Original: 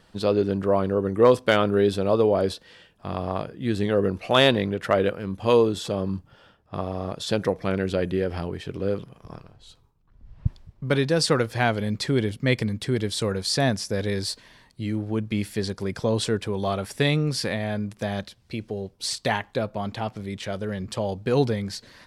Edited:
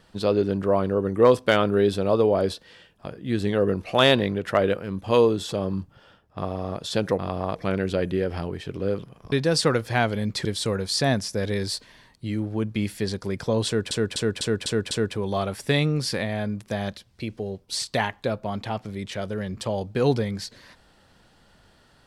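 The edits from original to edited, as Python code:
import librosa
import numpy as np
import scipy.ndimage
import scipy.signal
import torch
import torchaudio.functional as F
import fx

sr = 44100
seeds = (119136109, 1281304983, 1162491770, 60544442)

y = fx.edit(x, sr, fx.move(start_s=3.06, length_s=0.36, to_s=7.55),
    fx.cut(start_s=9.32, length_s=1.65),
    fx.cut(start_s=12.1, length_s=0.91),
    fx.repeat(start_s=16.22, length_s=0.25, count=6), tone=tone)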